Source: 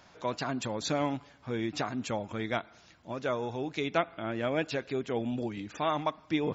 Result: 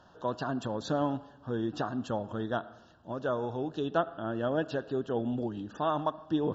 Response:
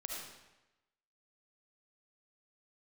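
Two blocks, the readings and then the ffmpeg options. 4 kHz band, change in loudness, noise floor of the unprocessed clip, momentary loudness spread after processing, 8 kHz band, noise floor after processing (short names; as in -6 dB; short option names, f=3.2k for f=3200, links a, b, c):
-6.0 dB, 0.0 dB, -59 dBFS, 6 LU, n/a, -58 dBFS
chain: -filter_complex "[0:a]asuperstop=centerf=2200:order=8:qfactor=2.3,aemphasis=mode=reproduction:type=75kf,asplit=2[a][b];[1:a]atrim=start_sample=2205,lowpass=3.5k[c];[b][c]afir=irnorm=-1:irlink=0,volume=-15dB[d];[a][d]amix=inputs=2:normalize=0"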